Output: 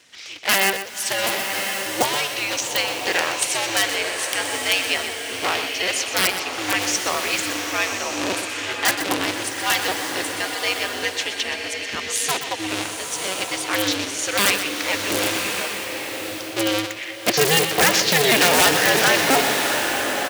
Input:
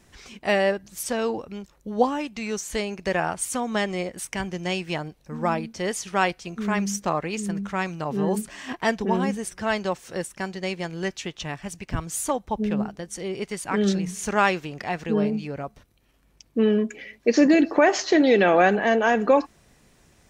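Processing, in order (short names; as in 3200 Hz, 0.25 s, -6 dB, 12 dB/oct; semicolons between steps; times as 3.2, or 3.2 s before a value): cycle switcher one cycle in 2, inverted; weighting filter D; wrapped overs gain 7 dB; HPF 56 Hz; low shelf 240 Hz -8.5 dB; echo 0.124 s -10 dB; bloom reverb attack 1.12 s, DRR 3.5 dB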